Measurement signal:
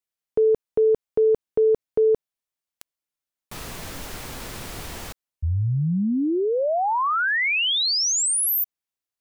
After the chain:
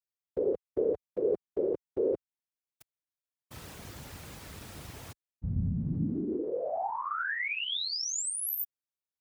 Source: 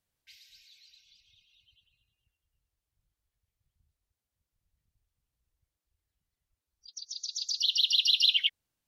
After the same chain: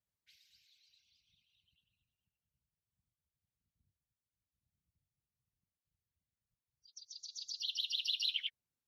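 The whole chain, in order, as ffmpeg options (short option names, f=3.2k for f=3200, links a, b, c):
-af "afftfilt=real='hypot(re,im)*cos(2*PI*random(0))':imag='hypot(re,im)*sin(2*PI*random(1))':win_size=512:overlap=0.75,highpass=58,lowshelf=f=160:g=7,volume=-5.5dB"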